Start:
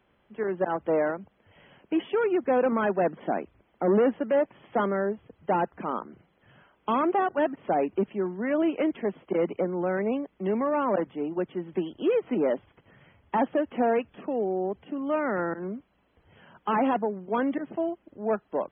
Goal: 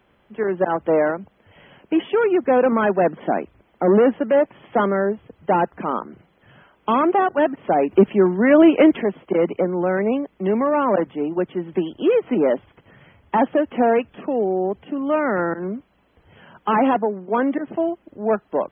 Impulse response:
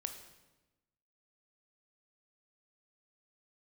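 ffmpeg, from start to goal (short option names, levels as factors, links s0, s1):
-filter_complex "[0:a]asplit=3[s0][s1][s2];[s0]afade=t=out:st=7.9:d=0.02[s3];[s1]acontrast=57,afade=t=in:st=7.9:d=0.02,afade=t=out:st=9.02:d=0.02[s4];[s2]afade=t=in:st=9.02:d=0.02[s5];[s3][s4][s5]amix=inputs=3:normalize=0,asettb=1/sr,asplit=3[s6][s7][s8];[s6]atrim=end=16.954[s9];[s7]atrim=start=16.95:end=17.68,asetpts=PTS-STARTPTS,afade=t=in:d=0.004:c=qsin,afade=t=out:st=0.726:d=0.004:c=qsin,highpass=180,lowpass=2600[s10];[s8]atrim=start=17.676[s11];[s9][s10]acrossfade=d=0.004:c1=hsin:c2=qsin[s12];[s12][s11]acrossfade=d=0.004:c1=qsin:c2=hsin,volume=2.24"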